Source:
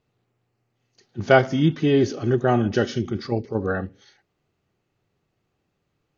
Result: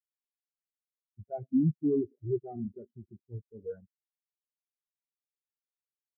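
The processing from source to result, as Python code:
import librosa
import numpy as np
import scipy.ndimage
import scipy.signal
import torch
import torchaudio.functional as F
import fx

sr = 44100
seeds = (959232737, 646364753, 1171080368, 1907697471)

y = fx.fuzz(x, sr, gain_db=28.0, gate_db=-34.0)
y = fx.spectral_expand(y, sr, expansion=4.0)
y = y * librosa.db_to_amplitude(-7.0)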